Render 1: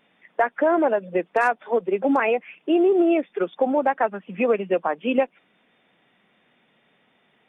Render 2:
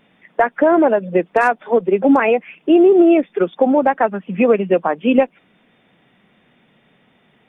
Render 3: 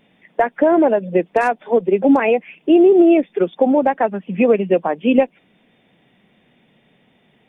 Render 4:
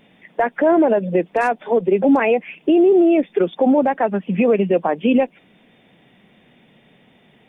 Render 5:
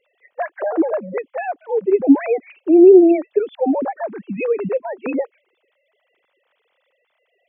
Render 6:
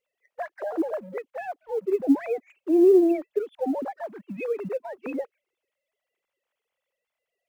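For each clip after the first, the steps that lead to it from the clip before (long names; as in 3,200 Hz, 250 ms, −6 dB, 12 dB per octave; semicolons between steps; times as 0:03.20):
low-shelf EQ 220 Hz +11.5 dB; level +4.5 dB
parametric band 1,300 Hz −7 dB 0.78 octaves
brickwall limiter −12 dBFS, peak gain reduction 10 dB; level +4 dB
three sine waves on the formant tracks
mu-law and A-law mismatch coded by A; level −8.5 dB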